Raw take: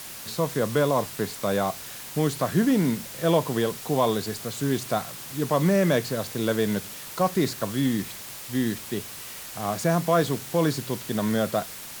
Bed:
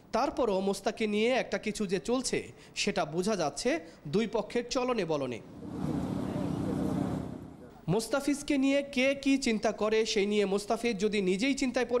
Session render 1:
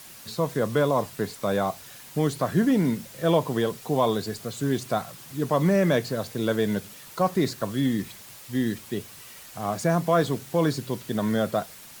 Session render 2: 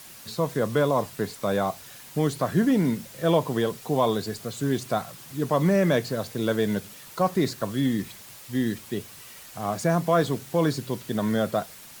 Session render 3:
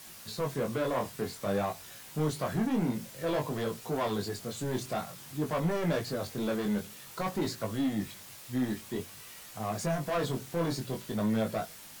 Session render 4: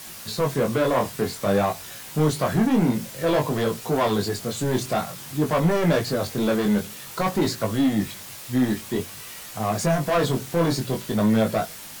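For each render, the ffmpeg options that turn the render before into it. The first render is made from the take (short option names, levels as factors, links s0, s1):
-af "afftdn=nr=7:nf=-39"
-filter_complex "[0:a]asettb=1/sr,asplit=3[s0][s1][s2];[s0]atrim=end=5.974[s3];[s1]atrim=start=5.97:end=7.2,asetpts=PTS-STARTPTS,afade=t=in:d=0.004:c=qsin,afade=t=out:st=1.226:d=0.004:c=qsin,acrusher=bits=8:mode=log:mix=0:aa=0.000001[s4];[s2]atrim=start=7.196[s5];[s3][s4]acrossfade=d=0.004:c1=hsin:c2=qsin[s6];[s6][s5]acrossfade=d=0.004:c1=qsin:c2=hsin"
-af "asoftclip=type=tanh:threshold=0.075,flanger=delay=18:depth=5.9:speed=0.52"
-af "volume=2.99"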